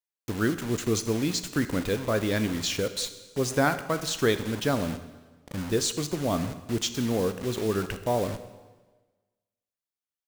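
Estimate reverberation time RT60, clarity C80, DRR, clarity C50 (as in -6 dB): 1.3 s, 13.5 dB, 10.0 dB, 12.0 dB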